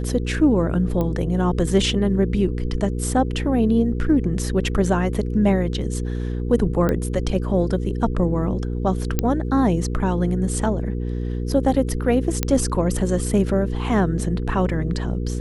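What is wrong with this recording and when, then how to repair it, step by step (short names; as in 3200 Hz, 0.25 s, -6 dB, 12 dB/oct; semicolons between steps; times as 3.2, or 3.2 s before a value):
hum 60 Hz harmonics 8 -25 dBFS
1.01 pop -13 dBFS
6.89 pop -10 dBFS
9.19 pop -5 dBFS
12.43 pop -5 dBFS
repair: de-click; de-hum 60 Hz, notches 8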